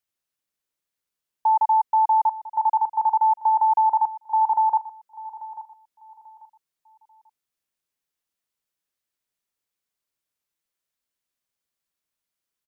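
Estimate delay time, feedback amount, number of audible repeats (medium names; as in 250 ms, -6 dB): 840 ms, 29%, 2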